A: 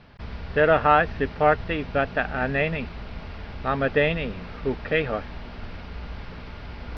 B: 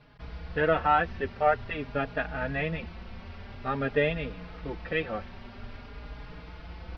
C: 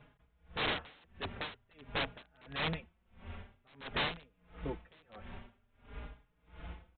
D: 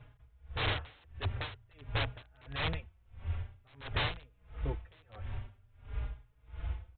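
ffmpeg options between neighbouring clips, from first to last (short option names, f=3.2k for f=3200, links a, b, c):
-filter_complex "[0:a]asplit=2[a][b];[b]adelay=4.4,afreqshift=0.49[c];[a][c]amix=inputs=2:normalize=1,volume=-3dB"
-af "aresample=8000,aeval=exprs='(mod(16.8*val(0)+1,2)-1)/16.8':c=same,aresample=44100,aeval=exprs='val(0)*pow(10,-31*(0.5-0.5*cos(2*PI*1.5*n/s))/20)':c=same,volume=-2dB"
-af "lowshelf=f=140:t=q:w=3:g=8.5"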